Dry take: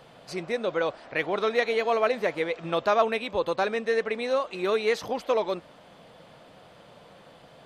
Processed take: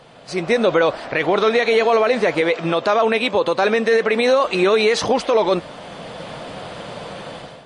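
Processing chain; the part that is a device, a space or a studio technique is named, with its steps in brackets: 2.41–4.44 HPF 150 Hz 12 dB/oct; low-bitrate web radio (AGC gain up to 14 dB; limiter -12.5 dBFS, peak gain reduction 11 dB; gain +5.5 dB; MP3 40 kbps 24000 Hz)

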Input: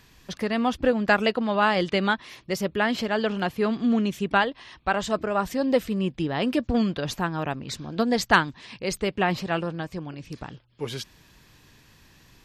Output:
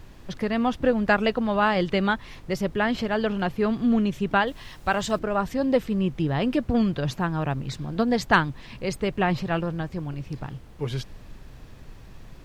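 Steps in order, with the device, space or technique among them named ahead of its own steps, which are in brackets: car interior (bell 130 Hz +9 dB 0.58 oct; high shelf 4000 Hz -7.5 dB; brown noise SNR 17 dB); 4.47–5.19 high shelf 3800 Hz +10 dB

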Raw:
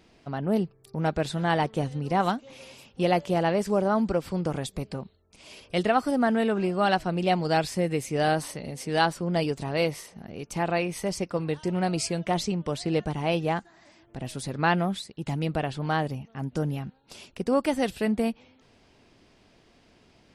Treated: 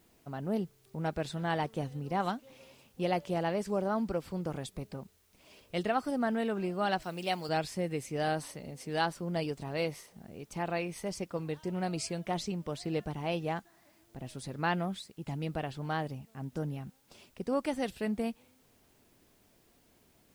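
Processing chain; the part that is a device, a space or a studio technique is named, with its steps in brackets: plain cassette with noise reduction switched in (mismatched tape noise reduction decoder only; wow and flutter 20 cents; white noise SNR 35 dB); 7.02–7.49 tilt +2.5 dB/oct; gain -7.5 dB

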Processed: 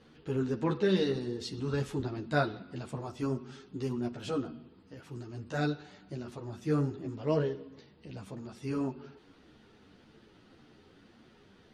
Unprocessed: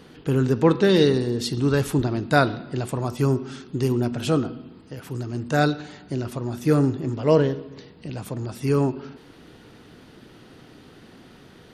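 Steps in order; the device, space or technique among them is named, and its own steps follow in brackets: string-machine ensemble chorus (ensemble effect; LPF 7200 Hz 12 dB/oct); gain -8 dB

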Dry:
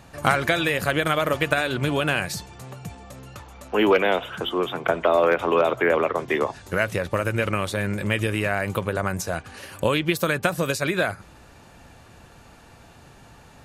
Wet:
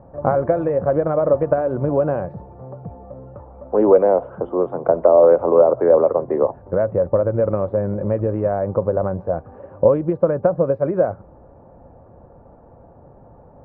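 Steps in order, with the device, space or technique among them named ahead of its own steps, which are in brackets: under water (LPF 960 Hz 24 dB/oct; bell 540 Hz +9 dB 0.42 oct); gain +2.5 dB

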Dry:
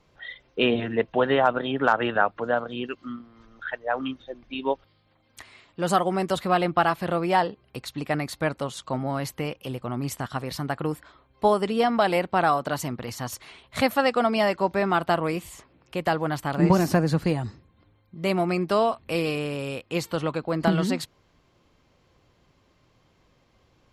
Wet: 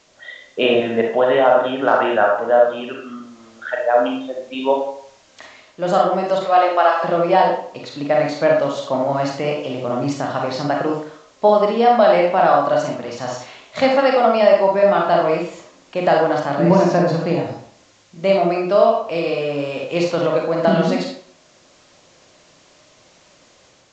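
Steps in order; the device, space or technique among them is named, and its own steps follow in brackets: 6.44–7.04 HPF 420 Hz 24 dB/oct; filmed off a television (BPF 160–7100 Hz; bell 600 Hz +10 dB 0.47 oct; reverb RT60 0.60 s, pre-delay 32 ms, DRR -1 dB; white noise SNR 34 dB; AGC gain up to 4 dB; AAC 64 kbps 16000 Hz)

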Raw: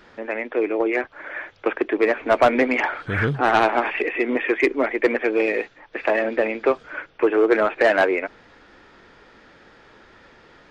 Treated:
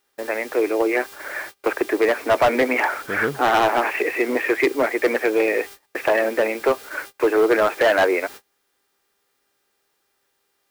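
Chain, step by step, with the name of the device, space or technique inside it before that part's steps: aircraft radio (BPF 310–2500 Hz; hard clip -14.5 dBFS, distortion -12 dB; buzz 400 Hz, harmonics 14, -51 dBFS -2 dB/oct; white noise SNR 22 dB; gate -38 dBFS, range -29 dB); gain +3 dB

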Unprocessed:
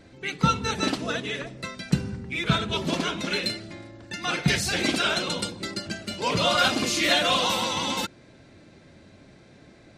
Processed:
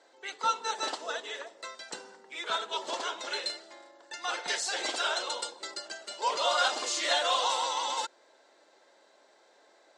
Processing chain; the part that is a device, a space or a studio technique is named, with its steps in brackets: phone speaker on a table (speaker cabinet 460–8400 Hz, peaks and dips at 900 Hz +7 dB, 2400 Hz -9 dB, 7600 Hz +6 dB); gain -5 dB

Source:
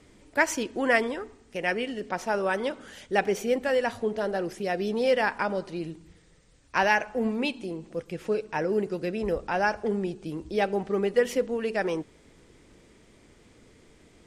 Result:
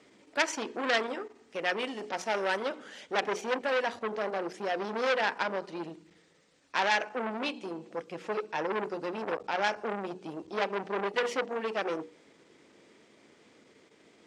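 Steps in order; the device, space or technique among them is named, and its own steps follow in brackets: notches 60/120/180/240/300/360/420/480 Hz; public-address speaker with an overloaded transformer (core saturation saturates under 3800 Hz; BPF 240–6400 Hz); 1.79–2.63 high shelf 6100 Hz +10.5 dB

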